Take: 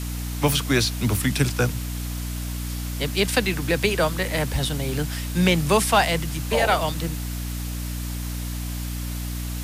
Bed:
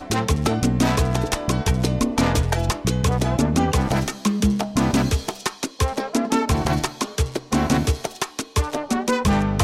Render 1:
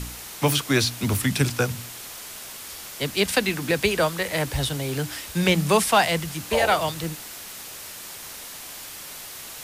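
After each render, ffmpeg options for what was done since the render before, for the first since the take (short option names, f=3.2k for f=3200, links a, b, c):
-af "bandreject=f=60:t=h:w=4,bandreject=f=120:t=h:w=4,bandreject=f=180:t=h:w=4,bandreject=f=240:t=h:w=4,bandreject=f=300:t=h:w=4"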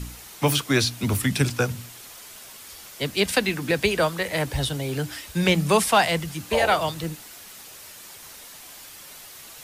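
-af "afftdn=nr=6:nf=-39"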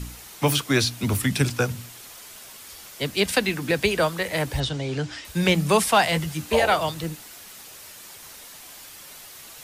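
-filter_complex "[0:a]asettb=1/sr,asplit=3[a][b][c];[a]atrim=end=4.604[d];[b]atrim=start=4.6:end=5.25,asetpts=PTS-STARTPTS,afade=t=in:d=0.004:c=qsin,afade=t=out:st=0.646:d=0.004:c=qsin,lowpass=f=6.9k:w=0.5412,lowpass=f=6.9k:w=1.3066[e];[c]atrim=start=5.246[f];[d][e]acrossfade=d=0.004:c1=hsin:c2=qsin[g];[g][f]acrossfade=d=0.004:c1=qsin:c2=hsin,asettb=1/sr,asplit=3[h][i][j];[h]atrim=end=6.114[k];[i]atrim=start=6.11:end=6.6,asetpts=PTS-STARTPTS,afade=t=in:d=0.004:c=qsin,afade=t=out:st=0.486:d=0.004:c=qsin,asplit=2[l][m];[m]adelay=13,volume=-5dB[n];[l][n]amix=inputs=2:normalize=0,atrim=end_sample=21609[o];[j]atrim=start=6.596[p];[k][o]acrossfade=d=0.004:c1=hsin:c2=qsin[q];[q][p]acrossfade=d=0.004:c1=qsin:c2=hsin"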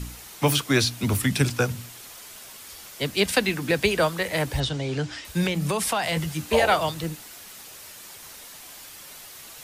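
-filter_complex "[0:a]asettb=1/sr,asplit=3[a][b][c];[a]atrim=end=5.444[d];[b]atrim=start=5.44:end=6.17,asetpts=PTS-STARTPTS,afade=t=in:d=0.004:c=qsin,afade=t=out:st=0.726:d=0.004:c=qsin,acompressor=threshold=-21dB:ratio=6:attack=3.2:release=140:knee=1:detection=peak[e];[c]atrim=start=6.166[f];[d][e]acrossfade=d=0.004:c1=hsin:c2=qsin[g];[g][f]acrossfade=d=0.004:c1=qsin:c2=hsin"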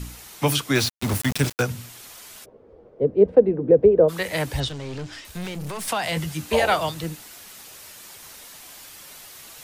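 -filter_complex "[0:a]asettb=1/sr,asplit=3[a][b][c];[a]atrim=end=0.754[d];[b]atrim=start=0.75:end=1.62,asetpts=PTS-STARTPTS,afade=t=in:d=0.004:c=qsin,afade=t=out:st=0.866:d=0.004:c=qsin,aeval=exprs='val(0)*gte(abs(val(0)),0.0562)':c=same[e];[c]atrim=start=1.616[f];[d][e]acrossfade=d=0.004:c1=hsin:c2=qsin[g];[g][f]acrossfade=d=0.004:c1=qsin:c2=hsin,asplit=3[h][i][j];[h]afade=t=out:st=2.44:d=0.02[k];[i]lowpass=f=470:t=q:w=4.8,afade=t=in:st=2.44:d=0.02,afade=t=out:st=4.08:d=0.02[l];[j]afade=t=in:st=4.08:d=0.02[m];[k][l][m]amix=inputs=3:normalize=0,asettb=1/sr,asplit=3[n][o][p];[n]atrim=end=4.684[q];[o]atrim=start=4.68:end=5.88,asetpts=PTS-STARTPTS,afade=t=in:d=0.004:c=qsin,afade=t=out:st=1.196:d=0.004:c=qsin,aeval=exprs='(tanh(28.2*val(0)+0.45)-tanh(0.45))/28.2':c=same[r];[p]atrim=start=5.876[s];[q][r]acrossfade=d=0.004:c1=hsin:c2=qsin[t];[t][s]acrossfade=d=0.004:c1=qsin:c2=hsin"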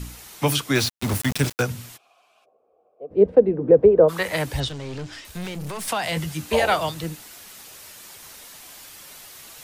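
-filter_complex "[0:a]asplit=3[a][b][c];[a]afade=t=out:st=1.96:d=0.02[d];[b]asplit=3[e][f][g];[e]bandpass=f=730:t=q:w=8,volume=0dB[h];[f]bandpass=f=1.09k:t=q:w=8,volume=-6dB[i];[g]bandpass=f=2.44k:t=q:w=8,volume=-9dB[j];[h][i][j]amix=inputs=3:normalize=0,afade=t=in:st=1.96:d=0.02,afade=t=out:st=3.1:d=0.02[k];[c]afade=t=in:st=3.1:d=0.02[l];[d][k][l]amix=inputs=3:normalize=0,asettb=1/sr,asplit=3[m][n][o];[m]atrim=end=3.614[p];[n]atrim=start=3.61:end=4.36,asetpts=PTS-STARTPTS,afade=t=in:d=0.004:c=qsin,afade=t=out:st=0.746:d=0.004:c=qsin,equalizer=f=1.1k:w=1.1:g=6.5[q];[o]atrim=start=4.356[r];[p][q]acrossfade=d=0.004:c1=hsin:c2=qsin[s];[s][r]acrossfade=d=0.004:c1=qsin:c2=hsin"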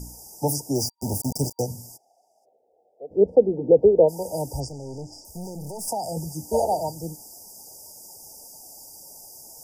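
-af "afftfilt=real='re*(1-between(b*sr/4096,940,4700))':imag='im*(1-between(b*sr/4096,940,4700))':win_size=4096:overlap=0.75,lowshelf=f=350:g=-4.5"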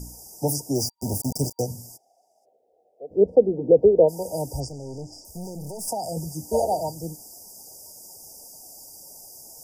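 -af "bandreject=f=860:w=12"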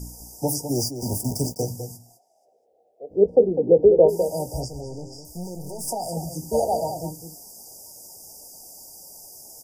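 -filter_complex "[0:a]asplit=2[a][b];[b]adelay=17,volume=-9.5dB[c];[a][c]amix=inputs=2:normalize=0,asplit=2[d][e];[e]adelay=204.1,volume=-9dB,highshelf=f=4k:g=-4.59[f];[d][f]amix=inputs=2:normalize=0"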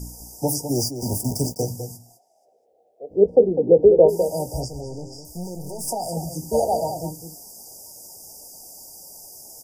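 -af "volume=1.5dB"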